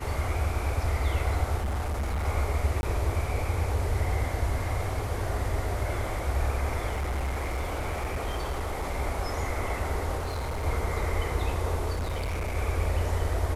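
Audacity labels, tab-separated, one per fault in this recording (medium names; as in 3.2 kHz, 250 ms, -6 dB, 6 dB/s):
1.570000	2.270000	clipped -26 dBFS
2.810000	2.830000	dropout 21 ms
6.920000	8.930000	clipped -26 dBFS
10.170000	10.650000	clipped -28 dBFS
11.930000	12.570000	clipped -27 dBFS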